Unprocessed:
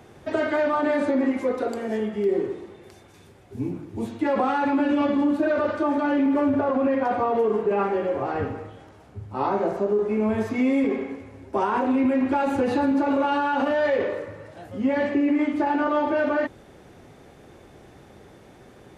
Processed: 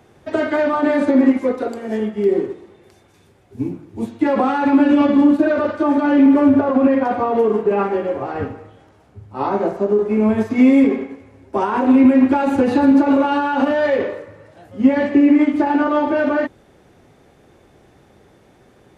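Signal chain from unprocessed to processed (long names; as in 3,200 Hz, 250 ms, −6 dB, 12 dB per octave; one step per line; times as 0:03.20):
dynamic equaliser 250 Hz, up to +4 dB, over −32 dBFS, Q 1.8
expander for the loud parts 1.5 to 1, over −34 dBFS
level +7.5 dB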